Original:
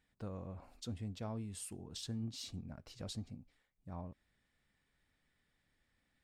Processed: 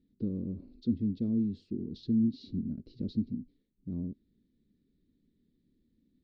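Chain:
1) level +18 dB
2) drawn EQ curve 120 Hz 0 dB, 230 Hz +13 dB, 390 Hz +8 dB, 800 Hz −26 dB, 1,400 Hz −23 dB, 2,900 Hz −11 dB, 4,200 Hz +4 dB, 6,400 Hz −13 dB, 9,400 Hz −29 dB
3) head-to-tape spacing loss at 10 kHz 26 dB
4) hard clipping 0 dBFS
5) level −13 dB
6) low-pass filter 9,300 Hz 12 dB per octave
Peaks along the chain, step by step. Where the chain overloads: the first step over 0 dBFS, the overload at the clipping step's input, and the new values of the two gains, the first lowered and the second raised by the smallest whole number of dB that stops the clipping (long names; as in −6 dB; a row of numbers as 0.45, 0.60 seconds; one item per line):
−13.0, −5.0, −5.5, −5.5, −18.5, −18.5 dBFS
no step passes full scale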